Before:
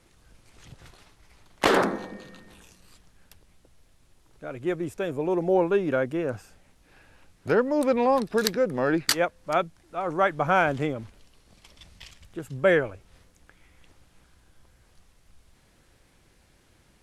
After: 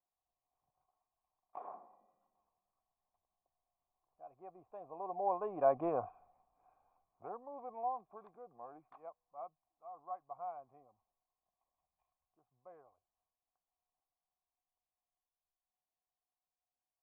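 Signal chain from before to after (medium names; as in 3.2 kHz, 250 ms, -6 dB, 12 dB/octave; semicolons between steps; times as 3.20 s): Doppler pass-by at 5.85 s, 18 m/s, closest 2.5 m; cascade formant filter a; trim +14.5 dB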